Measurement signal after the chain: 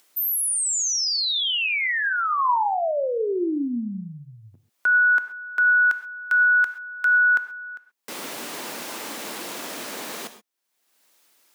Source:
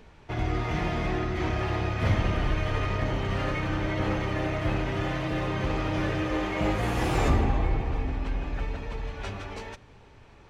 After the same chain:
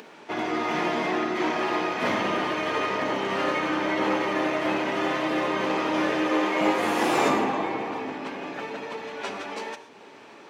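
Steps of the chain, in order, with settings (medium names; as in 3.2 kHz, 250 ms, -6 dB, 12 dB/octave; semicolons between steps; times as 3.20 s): high-pass 230 Hz 24 dB/octave; dynamic bell 990 Hz, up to +5 dB, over -49 dBFS, Q 5.3; upward compressor, threshold -46 dBFS; gated-style reverb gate 150 ms flat, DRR 9.5 dB; trim +5 dB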